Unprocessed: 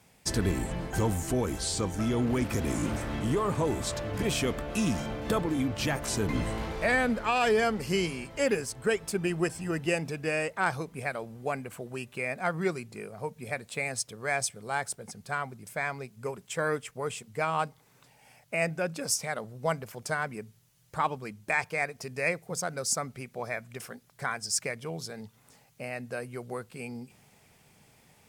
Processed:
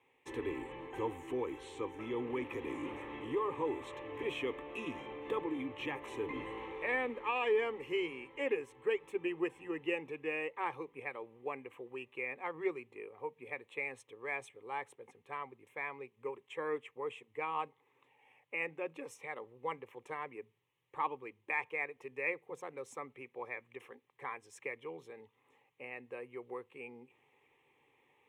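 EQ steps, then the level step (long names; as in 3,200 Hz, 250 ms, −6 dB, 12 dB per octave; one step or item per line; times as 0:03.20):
three-way crossover with the lows and the highs turned down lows −21 dB, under 170 Hz, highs −22 dB, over 3,800 Hz
phaser with its sweep stopped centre 980 Hz, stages 8
−4.5 dB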